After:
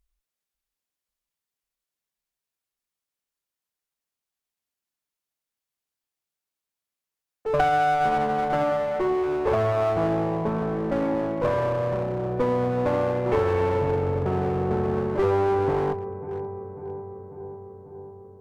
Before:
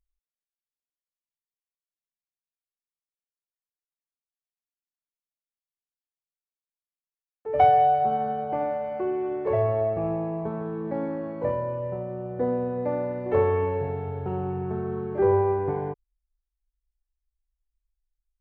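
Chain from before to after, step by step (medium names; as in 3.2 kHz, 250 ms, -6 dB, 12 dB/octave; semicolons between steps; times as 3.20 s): on a send: filtered feedback delay 545 ms, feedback 71%, low-pass 1.8 kHz, level -17 dB; on the sum: compression 5:1, threshold -23 dBFS, peak gain reduction 9 dB; one-sided clip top -34 dBFS; trim +7.5 dB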